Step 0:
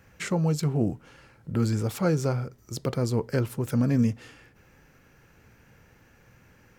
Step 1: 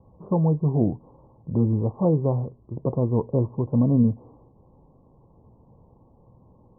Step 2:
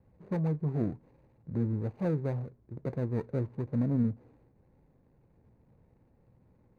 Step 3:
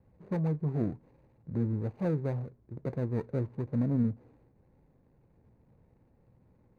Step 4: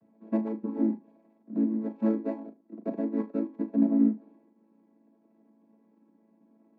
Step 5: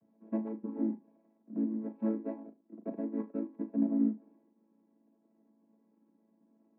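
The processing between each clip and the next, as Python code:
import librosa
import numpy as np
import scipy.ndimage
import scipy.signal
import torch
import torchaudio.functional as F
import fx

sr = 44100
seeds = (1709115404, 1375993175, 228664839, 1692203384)

y1 = scipy.signal.sosfilt(scipy.signal.cheby1(8, 1.0, 1100.0, 'lowpass', fs=sr, output='sos'), x)
y1 = y1 * 10.0 ** (4.0 / 20.0)
y2 = scipy.signal.medfilt(y1, 41)
y2 = y2 * 10.0 ** (-9.0 / 20.0)
y3 = y2
y4 = fx.chord_vocoder(y3, sr, chord='major triad', root=57)
y4 = fx.room_flutter(y4, sr, wall_m=6.4, rt60_s=0.23)
y4 = y4 * 10.0 ** (4.5 / 20.0)
y5 = fx.air_absorb(y4, sr, metres=360.0)
y5 = y5 * 10.0 ** (-5.5 / 20.0)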